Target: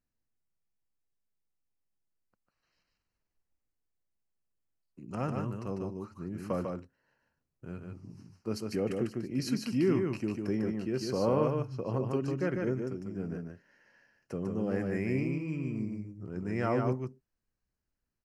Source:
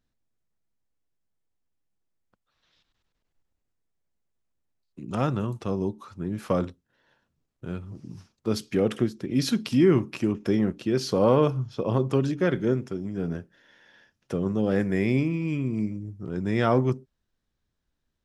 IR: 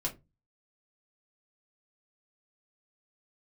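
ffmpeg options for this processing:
-af "asuperstop=centerf=3500:order=4:qfactor=3.3,aecho=1:1:148:0.631,volume=-8.5dB"

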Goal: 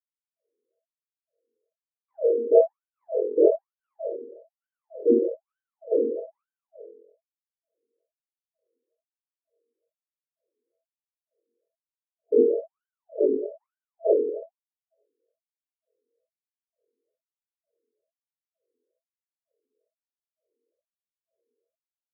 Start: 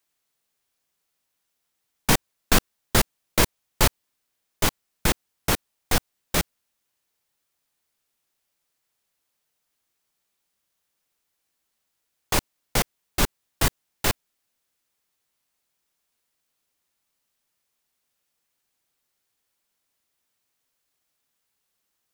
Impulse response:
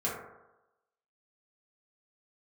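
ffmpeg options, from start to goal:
-filter_complex "[1:a]atrim=start_sample=2205[link_01];[0:a][link_01]afir=irnorm=-1:irlink=0,afftfilt=real='re*(1-between(b*sr/4096,670,6800))':imag='im*(1-between(b*sr/4096,670,6800))':win_size=4096:overlap=0.75,lowpass=11000,afftfilt=real='re*between(b*sr/1024,350*pow(2200/350,0.5+0.5*sin(2*PI*1.1*pts/sr))/1.41,350*pow(2200/350,0.5+0.5*sin(2*PI*1.1*pts/sr))*1.41)':imag='im*between(b*sr/1024,350*pow(2200/350,0.5+0.5*sin(2*PI*1.1*pts/sr))/1.41,350*pow(2200/350,0.5+0.5*sin(2*PI*1.1*pts/sr))*1.41)':win_size=1024:overlap=0.75,volume=6dB"

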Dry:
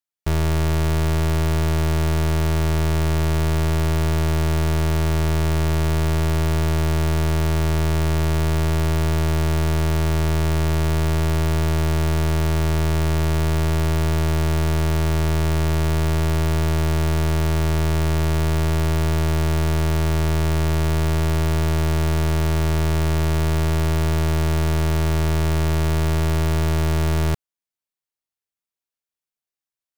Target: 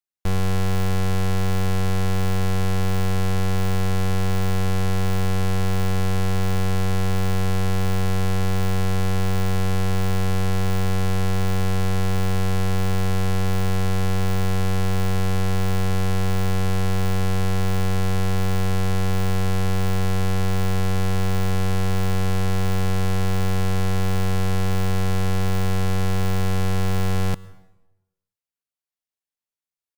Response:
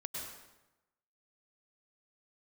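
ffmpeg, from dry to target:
-filter_complex "[0:a]aeval=exprs='0.119*(cos(1*acos(clip(val(0)/0.119,-1,1)))-cos(1*PI/2))+0.0596*(cos(8*acos(clip(val(0)/0.119,-1,1)))-cos(8*PI/2))':channel_layout=same,asetrate=52444,aresample=44100,atempo=0.840896,asplit=2[link_01][link_02];[1:a]atrim=start_sample=2205[link_03];[link_02][link_03]afir=irnorm=-1:irlink=0,volume=-17dB[link_04];[link_01][link_04]amix=inputs=2:normalize=0,volume=-3.5dB"

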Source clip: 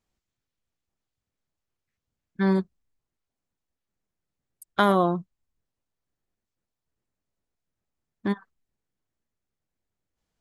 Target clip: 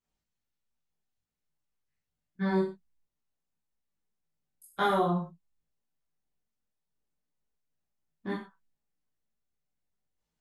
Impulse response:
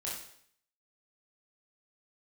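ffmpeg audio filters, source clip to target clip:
-filter_complex "[0:a]flanger=delay=17:depth=2.3:speed=2.9[link_01];[1:a]atrim=start_sample=2205,afade=type=out:start_time=0.25:duration=0.01,atrim=end_sample=11466,asetrate=61740,aresample=44100[link_02];[link_01][link_02]afir=irnorm=-1:irlink=0"

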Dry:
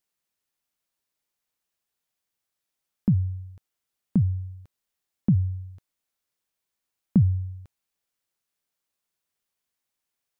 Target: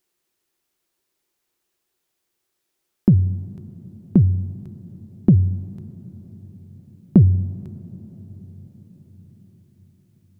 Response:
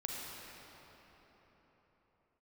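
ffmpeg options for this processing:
-filter_complex "[0:a]acontrast=64,equalizer=frequency=360:width=3.8:gain=13,asplit=2[link_01][link_02];[1:a]atrim=start_sample=2205,asetrate=31752,aresample=44100[link_03];[link_02][link_03]afir=irnorm=-1:irlink=0,volume=-18.5dB[link_04];[link_01][link_04]amix=inputs=2:normalize=0"

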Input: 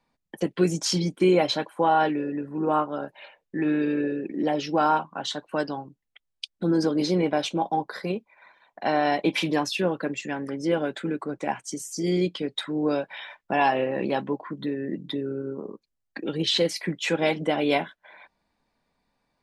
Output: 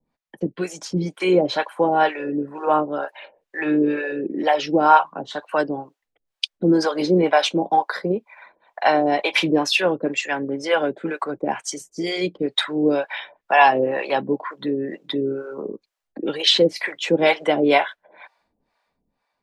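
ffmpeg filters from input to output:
ffmpeg -i in.wav -filter_complex "[0:a]highshelf=frequency=5300:gain=-8.5,acrossover=split=360[link_01][link_02];[link_02]dynaudnorm=framelen=240:gausssize=9:maxgain=11.5dB[link_03];[link_01][link_03]amix=inputs=2:normalize=0,acrossover=split=540[link_04][link_05];[link_04]aeval=exprs='val(0)*(1-1/2+1/2*cos(2*PI*2.1*n/s))':channel_layout=same[link_06];[link_05]aeval=exprs='val(0)*(1-1/2-1/2*cos(2*PI*2.1*n/s))':channel_layout=same[link_07];[link_06][link_07]amix=inputs=2:normalize=0,volume=3.5dB" out.wav

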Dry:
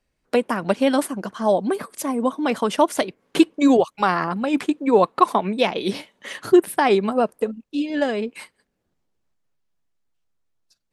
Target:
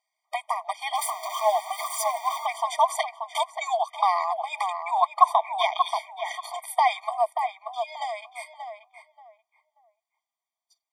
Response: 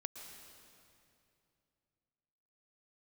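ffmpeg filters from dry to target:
-filter_complex "[0:a]asettb=1/sr,asplit=3[link_01][link_02][link_03];[link_01]atrim=end=0.954[link_04];[link_02]atrim=start=0.95:end=2.46,asetpts=PTS-STARTPTS,afade=type=in:duration=0.004:curve=qsin,afade=type=out:start_time=1.506:duration=0.004:curve=qsin,aeval=exprs='val(0)+0.5*0.0562*sgn(val(0))':channel_layout=same[link_05];[link_03]atrim=start=2.456[link_06];[link_04][link_05]acrossfade=duration=0.004:curve1=hsin:curve2=qsin[link_07];[link_07][link_06]acrossfade=duration=0.004:curve1=qsin:curve2=hsin,asplit=2[link_08][link_09];[link_09]adelay=583,lowpass=frequency=1400:poles=1,volume=-5dB,asplit=2[link_10][link_11];[link_11]adelay=583,lowpass=frequency=1400:poles=1,volume=0.26,asplit=2[link_12][link_13];[link_13]adelay=583,lowpass=frequency=1400:poles=1,volume=0.26[link_14];[link_10][link_12][link_14]amix=inputs=3:normalize=0[link_15];[link_08][link_15]amix=inputs=2:normalize=0,afftfilt=real='re*eq(mod(floor(b*sr/1024/620),2),1)':imag='im*eq(mod(floor(b*sr/1024/620),2),1)':win_size=1024:overlap=0.75"

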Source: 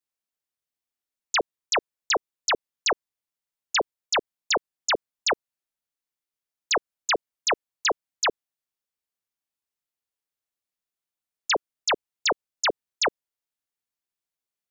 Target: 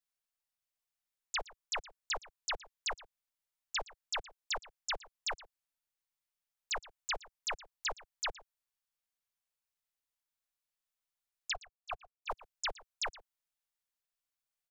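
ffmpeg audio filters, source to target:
ffmpeg -i in.wav -filter_complex "[0:a]acrossover=split=2900[link_01][link_02];[link_02]acompressor=threshold=-30dB:ratio=4:attack=1:release=60[link_03];[link_01][link_03]amix=inputs=2:normalize=0,asettb=1/sr,asplit=3[link_04][link_05][link_06];[link_04]atrim=end=11.534[link_07];[link_05]atrim=start=11.53:end=12.3,asetpts=PTS-STARTPTS,afade=type=in:duration=0.004:curve=qsin,afade=type=out:start_time=0.766:duration=0.004:curve=qsin,asplit=3[link_08][link_09][link_10];[link_08]bandpass=frequency=730:width_type=q:width=8,volume=0dB[link_11];[link_09]bandpass=frequency=1090:width_type=q:width=8,volume=-6dB[link_12];[link_10]bandpass=frequency=2440:width_type=q:width=8,volume=-9dB[link_13];[link_11][link_12][link_13]amix=inputs=3:normalize=0[link_14];[link_06]atrim=start=12.296[link_15];[link_07][link_14]acrossfade=duration=0.004:curve1=hsin:curve2=qsin[link_16];[link_16][link_15]acrossfade=duration=0.004:curve1=qsin:curve2=hsin,acrossover=split=140|520|3500[link_17][link_18][link_19][link_20];[link_18]aeval=exprs='abs(val(0))':channel_layout=same[link_21];[link_17][link_21][link_19][link_20]amix=inputs=4:normalize=0,acrossover=split=93|5300[link_22][link_23][link_24];[link_22]acompressor=threshold=-42dB:ratio=4[link_25];[link_23]acompressor=threshold=-35dB:ratio=4[link_26];[link_24]acompressor=threshold=-43dB:ratio=4[link_27];[link_25][link_26][link_27]amix=inputs=3:normalize=0,asplit=2[link_28][link_29];[link_29]adelay=116.6,volume=-19dB,highshelf=frequency=4000:gain=-2.62[link_30];[link_28][link_30]amix=inputs=2:normalize=0,volume=-2dB" out.wav

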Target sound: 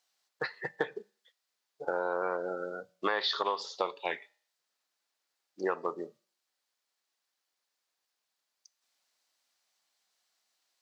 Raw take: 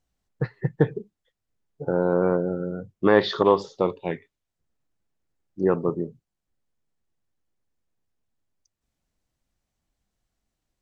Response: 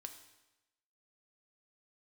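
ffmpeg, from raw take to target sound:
-filter_complex "[0:a]highpass=840,equalizer=frequency=4500:width=1.7:gain=7,acompressor=threshold=-32dB:ratio=8,asplit=2[link_01][link_02];[1:a]atrim=start_sample=2205,asetrate=83790,aresample=44100[link_03];[link_02][link_03]afir=irnorm=-1:irlink=0,volume=-1.5dB[link_04];[link_01][link_04]amix=inputs=2:normalize=0,volume=3.5dB"

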